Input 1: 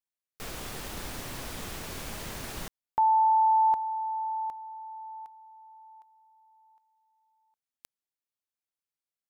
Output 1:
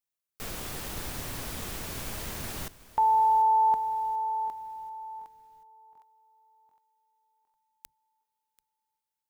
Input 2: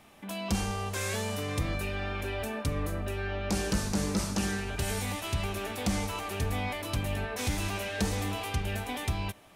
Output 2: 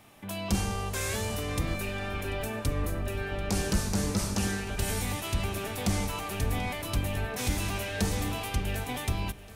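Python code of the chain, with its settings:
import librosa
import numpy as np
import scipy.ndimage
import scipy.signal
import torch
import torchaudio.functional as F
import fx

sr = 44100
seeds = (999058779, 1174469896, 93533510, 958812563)

y = fx.octave_divider(x, sr, octaves=1, level_db=-3.0)
y = fx.high_shelf(y, sr, hz=10000.0, db=6.0)
y = fx.echo_feedback(y, sr, ms=738, feedback_pct=49, wet_db=-18.5)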